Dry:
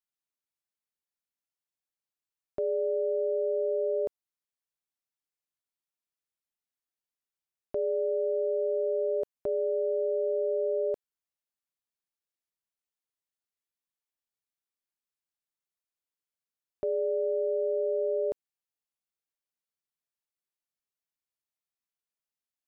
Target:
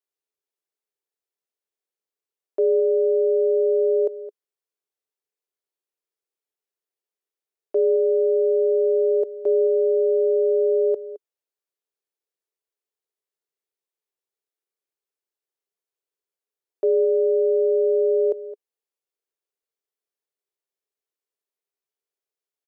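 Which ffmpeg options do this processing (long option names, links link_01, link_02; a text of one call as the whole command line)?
ffmpeg -i in.wav -filter_complex "[0:a]highpass=frequency=410:width_type=q:width=4.9,asplit=2[link_01][link_02];[link_02]adelay=215.7,volume=-16dB,highshelf=frequency=4000:gain=-4.85[link_03];[link_01][link_03]amix=inputs=2:normalize=0,volume=-1dB" out.wav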